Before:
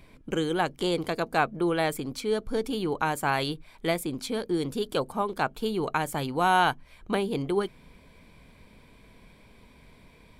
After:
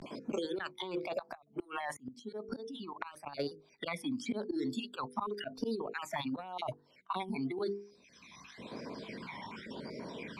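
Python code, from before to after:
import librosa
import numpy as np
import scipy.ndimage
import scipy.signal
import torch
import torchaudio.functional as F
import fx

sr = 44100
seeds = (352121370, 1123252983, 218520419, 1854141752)

y = fx.spec_dropout(x, sr, seeds[0], share_pct=23)
y = fx.noise_reduce_blind(y, sr, reduce_db=19)
y = scipy.signal.sosfilt(scipy.signal.butter(2, 260.0, 'highpass', fs=sr, output='sos'), y)
y = fx.high_shelf(y, sr, hz=6700.0, db=-8.0)
y = fx.hum_notches(y, sr, base_hz=50, count=10)
y = fx.auto_swell(y, sr, attack_ms=118.0)
y = fx.over_compress(y, sr, threshold_db=-37.0, ratio=-1.0)
y = fx.phaser_stages(y, sr, stages=12, low_hz=460.0, high_hz=3200.0, hz=0.93, feedback_pct=35)
y = fx.gate_flip(y, sr, shuts_db=-34.0, range_db=-26, at=(1.35, 3.4), fade=0.02)
y = fx.vibrato(y, sr, rate_hz=0.39, depth_cents=73.0)
y = fx.air_absorb(y, sr, metres=75.0)
y = fx.band_squash(y, sr, depth_pct=100)
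y = y * 10.0 ** (4.0 / 20.0)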